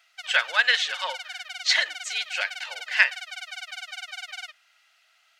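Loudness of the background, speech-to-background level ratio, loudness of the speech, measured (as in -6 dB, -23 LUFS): -36.0 LUFS, 12.0 dB, -24.0 LUFS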